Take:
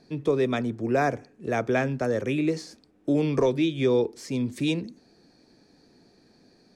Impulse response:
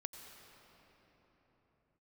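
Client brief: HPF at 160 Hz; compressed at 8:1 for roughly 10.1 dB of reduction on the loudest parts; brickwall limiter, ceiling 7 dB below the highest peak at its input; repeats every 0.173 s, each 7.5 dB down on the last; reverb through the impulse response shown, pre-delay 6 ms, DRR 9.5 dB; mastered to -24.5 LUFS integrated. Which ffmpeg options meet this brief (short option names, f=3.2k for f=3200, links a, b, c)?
-filter_complex "[0:a]highpass=160,acompressor=threshold=-29dB:ratio=8,alimiter=level_in=2.5dB:limit=-24dB:level=0:latency=1,volume=-2.5dB,aecho=1:1:173|346|519|692|865:0.422|0.177|0.0744|0.0312|0.0131,asplit=2[a][b];[1:a]atrim=start_sample=2205,adelay=6[c];[b][c]afir=irnorm=-1:irlink=0,volume=-6.5dB[d];[a][d]amix=inputs=2:normalize=0,volume=10.5dB"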